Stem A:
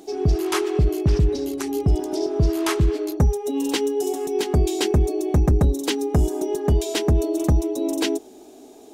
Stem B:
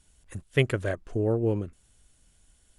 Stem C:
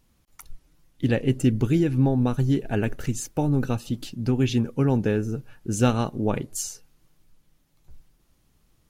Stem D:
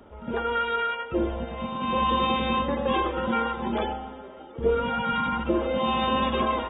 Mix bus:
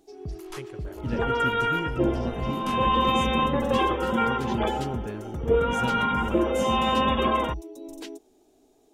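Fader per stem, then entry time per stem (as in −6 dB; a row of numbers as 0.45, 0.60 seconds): −16.5, −19.0, −12.0, +1.5 decibels; 0.00, 0.00, 0.00, 0.85 seconds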